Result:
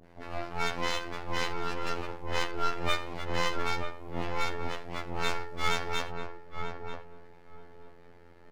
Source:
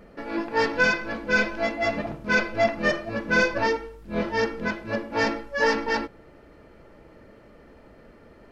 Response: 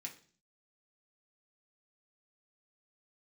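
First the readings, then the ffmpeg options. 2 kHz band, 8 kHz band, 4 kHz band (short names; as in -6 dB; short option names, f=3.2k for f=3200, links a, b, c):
-12.0 dB, -1.0 dB, -1.0 dB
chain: -filter_complex "[0:a]acrossover=split=610[a][b];[b]adelay=40[c];[a][c]amix=inputs=2:normalize=0,afftfilt=real='hypot(re,im)*cos(PI*b)':imag='0':win_size=2048:overlap=0.75,aeval=exprs='abs(val(0))':c=same,asplit=2[d][e];[e]adelay=938,lowpass=f=850:p=1,volume=-3.5dB,asplit=2[f][g];[g]adelay=938,lowpass=f=850:p=1,volume=0.21,asplit=2[h][i];[i]adelay=938,lowpass=f=850:p=1,volume=0.21[j];[f][h][j]amix=inputs=3:normalize=0[k];[d][k]amix=inputs=2:normalize=0,volume=-1.5dB"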